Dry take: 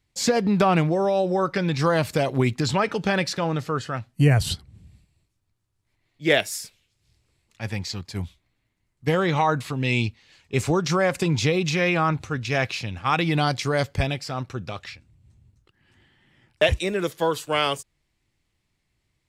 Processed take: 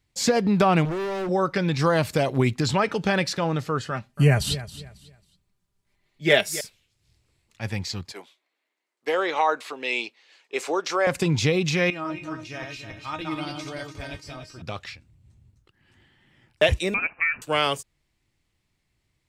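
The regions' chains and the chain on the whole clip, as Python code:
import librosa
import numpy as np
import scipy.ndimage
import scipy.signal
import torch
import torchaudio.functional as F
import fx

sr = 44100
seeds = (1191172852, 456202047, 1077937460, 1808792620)

y = fx.chain(x, sr, fx.ripple_eq(per_octave=0.72, db=12),
    fx.clip_hard(threshold_db=-26.5), at=(0.85, 1.29))
y = fx.chain(y, sr, fx.comb(ms=5.0, depth=0.53),
    fx.echo_feedback(ms=272, feedback_pct=27, wet_db=-15.0), at=(3.9, 6.61))
y = fx.chain(y, sr, fx.highpass(hz=380.0, slope=24),
    fx.high_shelf(hz=7600.0, db=-7.5), at=(8.12, 11.07))
y = fx.chain(y, sr, fx.reverse_delay_fb(ms=145, feedback_pct=50, wet_db=-3.5),
    fx.comb_fb(f0_hz=310.0, decay_s=0.16, harmonics='all', damping=0.0, mix_pct=90), at=(11.9, 14.62))
y = fx.chain(y, sr, fx.peak_eq(hz=110.0, db=-12.0, octaves=2.4),
    fx.freq_invert(carrier_hz=2800),
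    fx.band_squash(depth_pct=70), at=(16.94, 17.42))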